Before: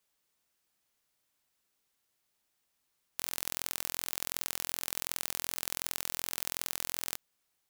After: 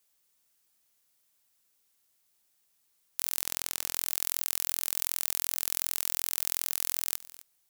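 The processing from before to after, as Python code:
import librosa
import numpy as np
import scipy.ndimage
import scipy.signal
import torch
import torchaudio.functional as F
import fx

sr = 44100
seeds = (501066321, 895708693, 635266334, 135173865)

p1 = fx.high_shelf(x, sr, hz=10000.0, db=-8.0, at=(3.42, 3.95))
p2 = fx.over_compress(p1, sr, threshold_db=-39.0, ratio=-1.0)
p3 = p1 + (p2 * 10.0 ** (2.0 / 20.0))
p4 = fx.high_shelf(p3, sr, hz=4900.0, db=9.5)
p5 = p4 + fx.echo_single(p4, sr, ms=260, db=-18.5, dry=0)
y = p5 * 10.0 ** (-8.5 / 20.0)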